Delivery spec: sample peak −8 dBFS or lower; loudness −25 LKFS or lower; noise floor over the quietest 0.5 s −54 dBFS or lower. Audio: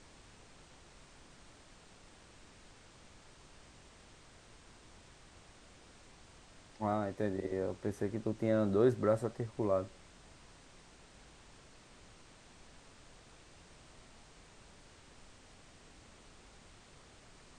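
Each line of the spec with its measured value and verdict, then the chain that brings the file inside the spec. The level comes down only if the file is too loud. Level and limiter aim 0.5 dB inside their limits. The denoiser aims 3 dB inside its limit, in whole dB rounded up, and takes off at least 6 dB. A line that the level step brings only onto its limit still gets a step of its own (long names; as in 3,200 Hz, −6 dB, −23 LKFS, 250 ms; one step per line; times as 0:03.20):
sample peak −16.5 dBFS: in spec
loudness −34.5 LKFS: in spec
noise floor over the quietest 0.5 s −59 dBFS: in spec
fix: no processing needed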